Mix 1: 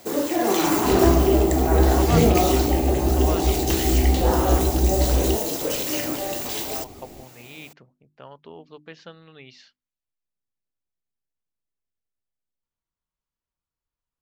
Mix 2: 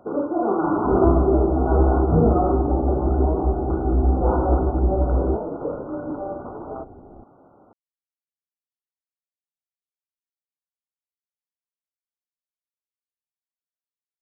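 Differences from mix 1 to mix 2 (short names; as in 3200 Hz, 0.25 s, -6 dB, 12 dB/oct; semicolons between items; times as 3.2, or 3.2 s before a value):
speech: muted; master: add brick-wall FIR low-pass 1500 Hz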